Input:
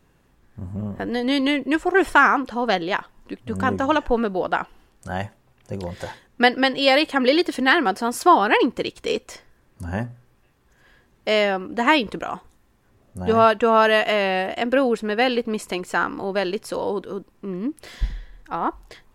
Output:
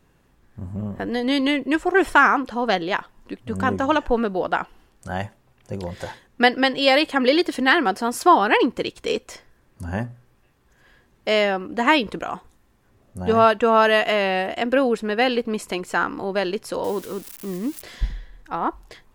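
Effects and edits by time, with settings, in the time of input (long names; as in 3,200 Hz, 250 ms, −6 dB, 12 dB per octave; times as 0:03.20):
0:16.84–0:17.82: spike at every zero crossing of −27.5 dBFS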